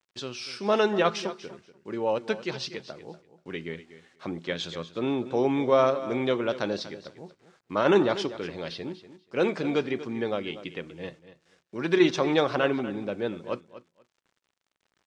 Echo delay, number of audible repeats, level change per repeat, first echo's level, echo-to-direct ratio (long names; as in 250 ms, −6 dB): 241 ms, 2, −15.5 dB, −14.5 dB, −14.5 dB